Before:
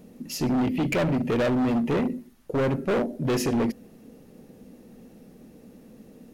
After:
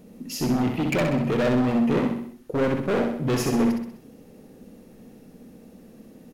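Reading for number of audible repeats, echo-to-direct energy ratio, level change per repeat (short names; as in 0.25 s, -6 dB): 5, -3.0 dB, -6.0 dB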